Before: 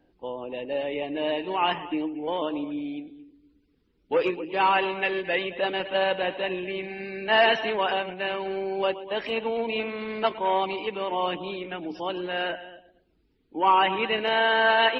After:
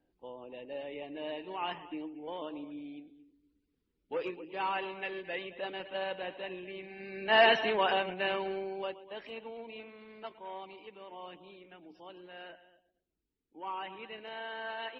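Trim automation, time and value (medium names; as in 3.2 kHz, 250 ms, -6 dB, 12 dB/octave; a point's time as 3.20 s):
6.89 s -12 dB
7.41 s -3 dB
8.37 s -3 dB
8.90 s -13 dB
10.06 s -19.5 dB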